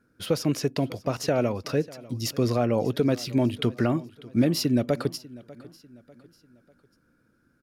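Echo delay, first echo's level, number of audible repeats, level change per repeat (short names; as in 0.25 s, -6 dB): 0.595 s, -20.5 dB, 2, -7.5 dB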